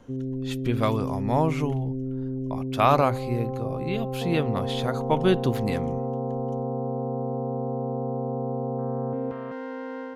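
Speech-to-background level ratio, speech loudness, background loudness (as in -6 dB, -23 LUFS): 4.0 dB, -26.5 LUFS, -30.5 LUFS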